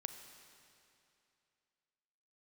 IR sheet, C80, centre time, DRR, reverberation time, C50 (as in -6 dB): 8.5 dB, 35 ms, 7.5 dB, 2.7 s, 8.0 dB